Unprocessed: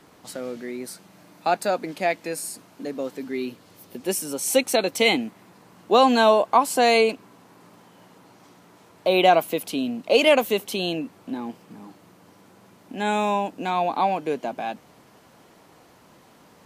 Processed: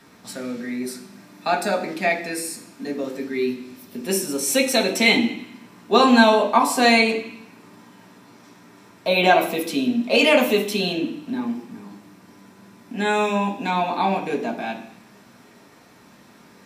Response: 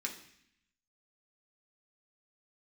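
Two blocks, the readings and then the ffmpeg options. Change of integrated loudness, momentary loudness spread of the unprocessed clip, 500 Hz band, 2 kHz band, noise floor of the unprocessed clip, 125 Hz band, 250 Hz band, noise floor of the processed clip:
+2.0 dB, 17 LU, 0.0 dB, +5.5 dB, -54 dBFS, +5.0 dB, +5.5 dB, -50 dBFS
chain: -filter_complex "[1:a]atrim=start_sample=2205[a];[0:a][a]afir=irnorm=-1:irlink=0,volume=3dB"

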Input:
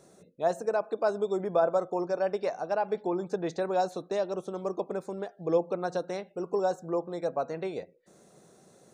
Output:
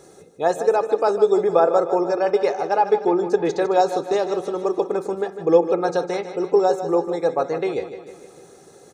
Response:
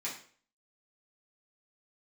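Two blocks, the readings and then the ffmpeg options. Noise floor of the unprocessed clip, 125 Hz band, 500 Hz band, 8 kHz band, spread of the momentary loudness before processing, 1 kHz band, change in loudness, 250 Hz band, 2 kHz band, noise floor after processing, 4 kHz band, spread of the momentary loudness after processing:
-60 dBFS, +5.0 dB, +10.5 dB, n/a, 7 LU, +11.0 dB, +10.5 dB, +10.0 dB, +8.5 dB, -48 dBFS, +10.0 dB, 7 LU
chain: -filter_complex "[0:a]aecho=1:1:2.4:0.52,aecho=1:1:153|306|459|612|765|918:0.282|0.155|0.0853|0.0469|0.0258|0.0142,asplit=2[a][b];[1:a]atrim=start_sample=2205,lowpass=3.3k[c];[b][c]afir=irnorm=-1:irlink=0,volume=-15dB[d];[a][d]amix=inputs=2:normalize=0,volume=8.5dB"

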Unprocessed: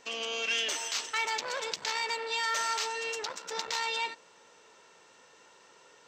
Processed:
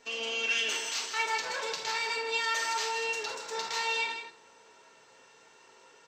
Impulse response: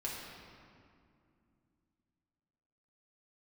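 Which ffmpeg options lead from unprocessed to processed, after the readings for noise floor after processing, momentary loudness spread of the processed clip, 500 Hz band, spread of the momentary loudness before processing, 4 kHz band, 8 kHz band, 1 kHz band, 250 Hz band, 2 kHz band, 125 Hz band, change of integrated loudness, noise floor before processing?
-59 dBFS, 6 LU, +1.0 dB, 7 LU, 0.0 dB, -0.5 dB, +0.5 dB, +0.5 dB, +2.0 dB, n/a, +1.0 dB, -59 dBFS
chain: -filter_complex "[0:a]aecho=1:1:157:0.376[a];[1:a]atrim=start_sample=2205,atrim=end_sample=3969[b];[a][b]afir=irnorm=-1:irlink=0"

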